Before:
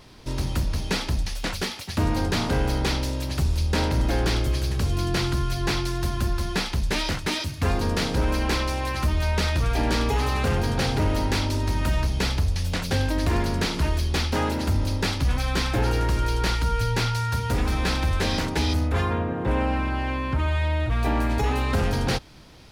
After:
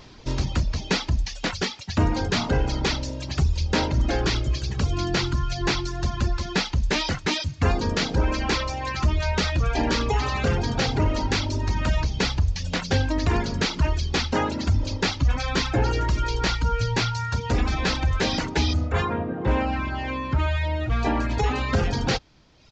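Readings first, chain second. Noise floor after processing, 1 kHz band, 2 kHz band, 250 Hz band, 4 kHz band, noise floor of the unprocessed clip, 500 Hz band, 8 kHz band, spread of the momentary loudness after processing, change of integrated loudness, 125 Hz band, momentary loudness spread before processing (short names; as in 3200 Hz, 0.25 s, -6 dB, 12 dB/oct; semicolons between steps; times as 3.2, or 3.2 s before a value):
-39 dBFS, +0.5 dB, +1.0 dB, 0.0 dB, +1.5 dB, -34 dBFS, +0.5 dB, -0.5 dB, 4 LU, 0.0 dB, -0.5 dB, 3 LU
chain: reverb removal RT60 1.2 s; downsampling 16000 Hz; gain +3 dB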